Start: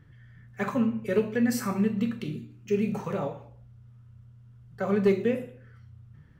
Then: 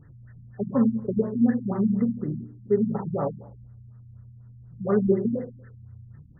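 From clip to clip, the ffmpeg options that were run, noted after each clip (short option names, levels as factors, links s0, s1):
-af "bandreject=f=98.66:t=h:w=4,bandreject=f=197.32:t=h:w=4,afftfilt=real='re*lt(b*sr/1024,240*pow(2100/240,0.5+0.5*sin(2*PI*4.1*pts/sr)))':imag='im*lt(b*sr/1024,240*pow(2100/240,0.5+0.5*sin(2*PI*4.1*pts/sr)))':win_size=1024:overlap=0.75,volume=1.68"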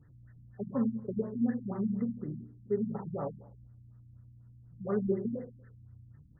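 -af "aeval=exprs='val(0)+0.00158*(sin(2*PI*60*n/s)+sin(2*PI*2*60*n/s)/2+sin(2*PI*3*60*n/s)/3+sin(2*PI*4*60*n/s)/4+sin(2*PI*5*60*n/s)/5)':c=same,volume=0.355"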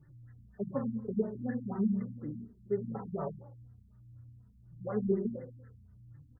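-filter_complex "[0:a]asplit=2[s0][s1];[s1]adelay=2.9,afreqshift=-1.5[s2];[s0][s2]amix=inputs=2:normalize=1,volume=1.41"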